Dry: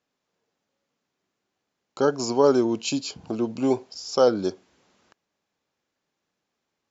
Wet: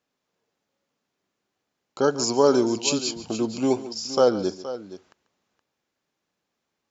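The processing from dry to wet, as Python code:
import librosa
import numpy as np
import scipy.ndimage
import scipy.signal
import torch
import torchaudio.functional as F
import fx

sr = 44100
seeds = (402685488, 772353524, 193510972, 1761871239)

y = fx.high_shelf(x, sr, hz=4200.0, db=9.0, at=(2.04, 4.07))
y = fx.echo_multitap(y, sr, ms=(141, 471), db=(-16.0, -14.0))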